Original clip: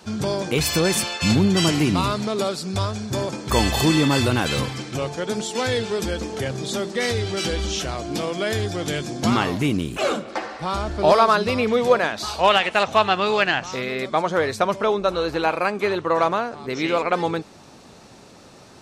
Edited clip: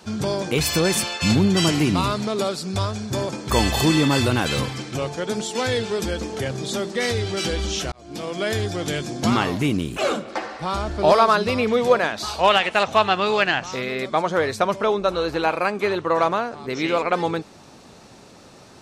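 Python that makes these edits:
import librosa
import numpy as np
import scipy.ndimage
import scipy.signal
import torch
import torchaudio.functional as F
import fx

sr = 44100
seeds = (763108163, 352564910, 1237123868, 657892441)

y = fx.edit(x, sr, fx.fade_in_span(start_s=7.92, length_s=0.52), tone=tone)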